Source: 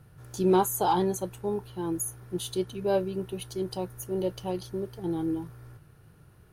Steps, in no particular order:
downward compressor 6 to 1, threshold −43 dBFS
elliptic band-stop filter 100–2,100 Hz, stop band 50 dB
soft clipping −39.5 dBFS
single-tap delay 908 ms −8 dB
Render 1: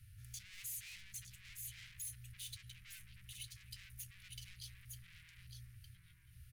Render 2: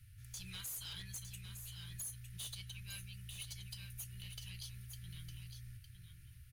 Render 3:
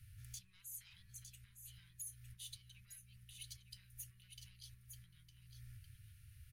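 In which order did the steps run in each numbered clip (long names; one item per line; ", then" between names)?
single-tap delay, then soft clipping, then downward compressor, then elliptic band-stop filter
elliptic band-stop filter, then soft clipping, then downward compressor, then single-tap delay
downward compressor, then single-tap delay, then soft clipping, then elliptic band-stop filter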